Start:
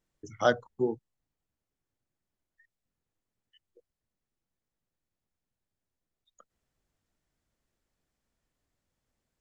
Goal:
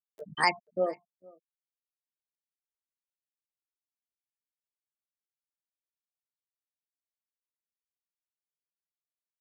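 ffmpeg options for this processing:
ffmpeg -i in.wav -filter_complex "[0:a]afftfilt=real='re*gte(hypot(re,im),0.0355)':imag='im*gte(hypot(re,im),0.0355)':win_size=1024:overlap=0.75,asplit=2[link_01][link_02];[link_02]acompressor=mode=upward:threshold=-30dB:ratio=2.5,volume=1.5dB[link_03];[link_01][link_03]amix=inputs=2:normalize=0,alimiter=limit=-9dB:level=0:latency=1:release=223,crystalizer=i=9:c=0,asplit=2[link_04][link_05];[link_05]adelay=454.8,volume=-25dB,highshelf=frequency=4000:gain=-10.2[link_06];[link_04][link_06]amix=inputs=2:normalize=0,asetrate=64194,aresample=44100,atempo=0.686977,volume=-8dB" out.wav

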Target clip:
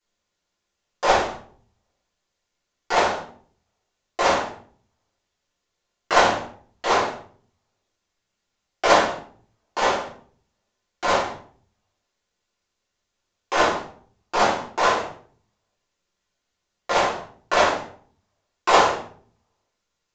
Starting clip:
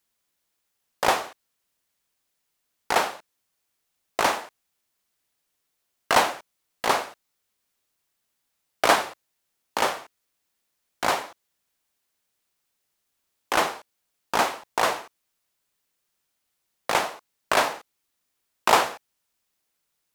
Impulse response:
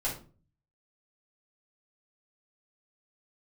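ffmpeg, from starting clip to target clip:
-filter_complex "[1:a]atrim=start_sample=2205,asetrate=30429,aresample=44100[link_01];[0:a][link_01]afir=irnorm=-1:irlink=0,aresample=16000,aresample=44100,volume=-4.5dB"

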